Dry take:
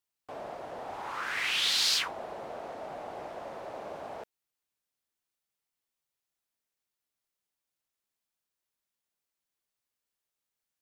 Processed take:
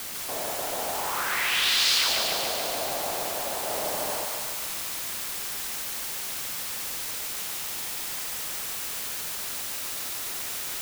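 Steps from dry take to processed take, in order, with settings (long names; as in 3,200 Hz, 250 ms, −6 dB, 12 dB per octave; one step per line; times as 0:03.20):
in parallel at 0 dB: downward compressor, threshold −36 dBFS, peak gain reduction 12 dB
on the sum: bit-depth reduction 6 bits, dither triangular
0:03.65–0:04.16: double-tracking delay 44 ms −4.5 dB
feedback echo with a high-pass in the loop 145 ms, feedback 72%, high-pass 490 Hz, level −3 dB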